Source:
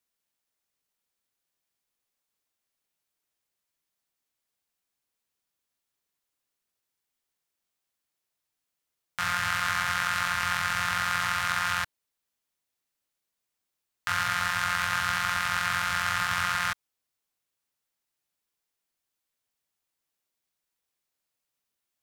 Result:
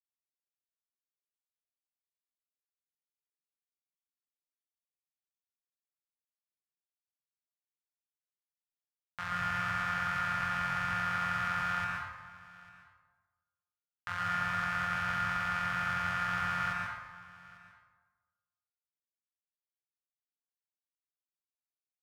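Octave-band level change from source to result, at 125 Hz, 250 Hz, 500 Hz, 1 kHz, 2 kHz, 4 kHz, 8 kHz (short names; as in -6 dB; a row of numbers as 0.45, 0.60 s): -1.0, +1.0, -3.5, -4.0, -5.5, -12.5, -17.5 dB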